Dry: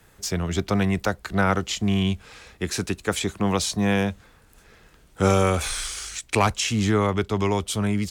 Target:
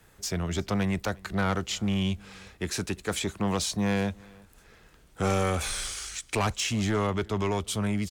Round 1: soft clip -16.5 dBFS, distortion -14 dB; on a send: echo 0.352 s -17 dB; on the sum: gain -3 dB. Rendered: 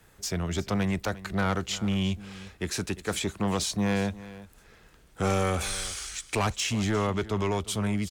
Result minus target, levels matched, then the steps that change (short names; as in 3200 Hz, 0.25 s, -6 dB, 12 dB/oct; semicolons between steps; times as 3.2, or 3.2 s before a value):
echo-to-direct +8.5 dB
change: echo 0.352 s -25.5 dB